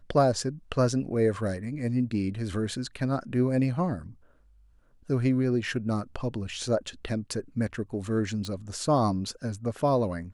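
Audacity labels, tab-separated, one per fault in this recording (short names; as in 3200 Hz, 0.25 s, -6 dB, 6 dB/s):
8.450000	8.450000	pop -23 dBFS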